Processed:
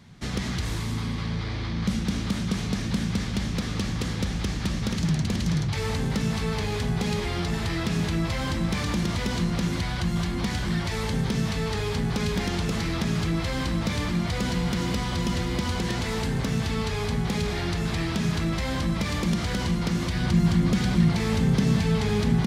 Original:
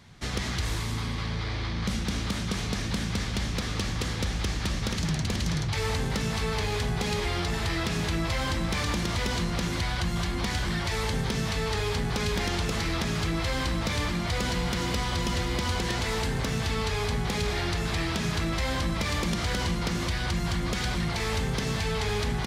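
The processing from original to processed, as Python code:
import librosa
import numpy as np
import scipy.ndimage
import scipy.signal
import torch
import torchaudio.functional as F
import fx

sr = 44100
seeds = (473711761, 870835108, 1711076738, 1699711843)

y = fx.peak_eq(x, sr, hz=190.0, db=fx.steps((0.0, 7.5), (20.15, 14.5)), octaves=1.5)
y = y * 10.0 ** (-1.5 / 20.0)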